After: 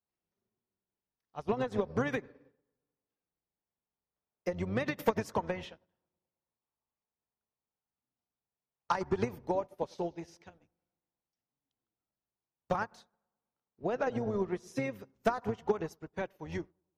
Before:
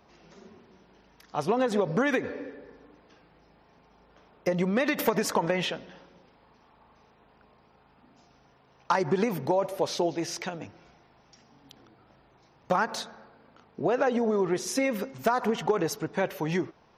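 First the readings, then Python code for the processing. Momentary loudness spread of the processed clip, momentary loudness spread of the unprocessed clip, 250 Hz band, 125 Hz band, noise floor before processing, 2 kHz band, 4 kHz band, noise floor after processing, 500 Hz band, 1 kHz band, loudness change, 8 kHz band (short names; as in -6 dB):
9 LU, 11 LU, -8.0 dB, -5.5 dB, -61 dBFS, -8.5 dB, -14.0 dB, under -85 dBFS, -7.0 dB, -7.0 dB, -7.0 dB, -17.0 dB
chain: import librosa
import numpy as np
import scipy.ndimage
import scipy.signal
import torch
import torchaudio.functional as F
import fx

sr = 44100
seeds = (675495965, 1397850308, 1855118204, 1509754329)

y = fx.octave_divider(x, sr, octaves=1, level_db=-4.0)
y = fx.echo_bbd(y, sr, ms=107, stages=1024, feedback_pct=68, wet_db=-16)
y = fx.upward_expand(y, sr, threshold_db=-44.0, expansion=2.5)
y = y * 10.0 ** (-2.0 / 20.0)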